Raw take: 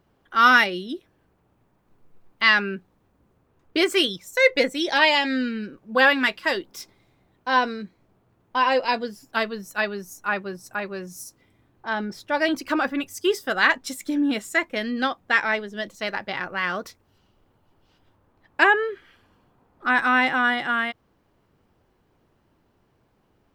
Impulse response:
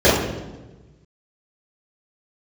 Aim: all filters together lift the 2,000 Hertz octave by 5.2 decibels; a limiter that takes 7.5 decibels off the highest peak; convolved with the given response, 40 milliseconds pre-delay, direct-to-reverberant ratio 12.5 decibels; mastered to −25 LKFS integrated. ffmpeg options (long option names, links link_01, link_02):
-filter_complex "[0:a]equalizer=frequency=2000:width_type=o:gain=6.5,alimiter=limit=-7dB:level=0:latency=1,asplit=2[link_01][link_02];[1:a]atrim=start_sample=2205,adelay=40[link_03];[link_02][link_03]afir=irnorm=-1:irlink=0,volume=-39.5dB[link_04];[link_01][link_04]amix=inputs=2:normalize=0,volume=-4.5dB"